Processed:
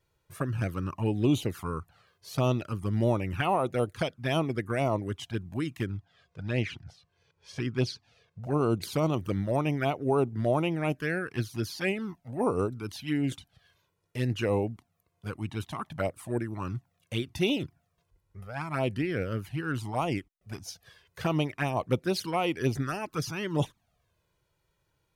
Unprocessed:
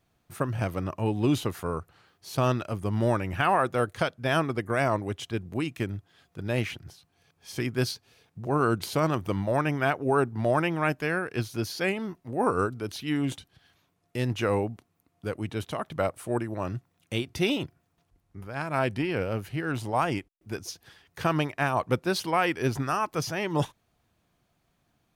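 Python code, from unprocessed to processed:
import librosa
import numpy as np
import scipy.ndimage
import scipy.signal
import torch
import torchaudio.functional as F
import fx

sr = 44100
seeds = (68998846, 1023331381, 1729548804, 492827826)

y = fx.lowpass(x, sr, hz=5800.0, slope=12, at=(5.86, 8.43))
y = fx.env_flanger(y, sr, rest_ms=2.1, full_db=-21.0)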